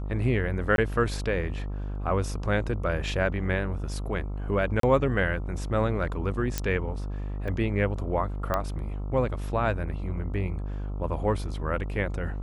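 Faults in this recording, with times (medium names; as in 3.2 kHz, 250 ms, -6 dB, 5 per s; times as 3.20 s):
buzz 50 Hz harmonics 27 -32 dBFS
0.76–0.78 s: dropout 22 ms
4.80–4.83 s: dropout 33 ms
6.58 s: pop -11 dBFS
7.48 s: dropout 2.9 ms
8.54 s: pop -13 dBFS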